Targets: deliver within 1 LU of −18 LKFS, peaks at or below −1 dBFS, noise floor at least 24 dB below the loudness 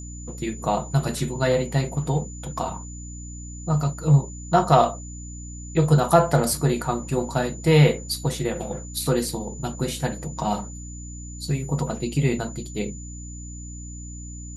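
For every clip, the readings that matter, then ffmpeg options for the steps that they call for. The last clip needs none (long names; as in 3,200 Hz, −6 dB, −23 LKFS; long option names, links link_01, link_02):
mains hum 60 Hz; hum harmonics up to 300 Hz; level of the hum −35 dBFS; interfering tone 7,000 Hz; level of the tone −41 dBFS; integrated loudness −23.5 LKFS; sample peak −2.5 dBFS; target loudness −18.0 LKFS
→ -af "bandreject=frequency=60:width_type=h:width=4,bandreject=frequency=120:width_type=h:width=4,bandreject=frequency=180:width_type=h:width=4,bandreject=frequency=240:width_type=h:width=4,bandreject=frequency=300:width_type=h:width=4"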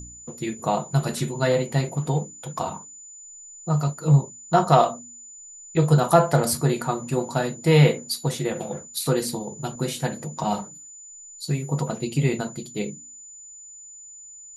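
mains hum none found; interfering tone 7,000 Hz; level of the tone −41 dBFS
→ -af "bandreject=frequency=7000:width=30"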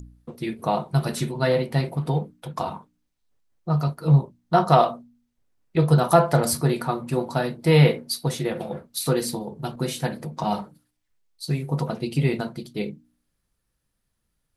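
interfering tone none found; integrated loudness −23.5 LKFS; sample peak −2.5 dBFS; target loudness −18.0 LKFS
→ -af "volume=5.5dB,alimiter=limit=-1dB:level=0:latency=1"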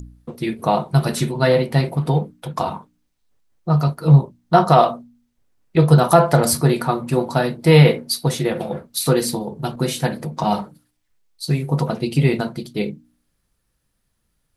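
integrated loudness −18.5 LKFS; sample peak −1.0 dBFS; background noise floor −71 dBFS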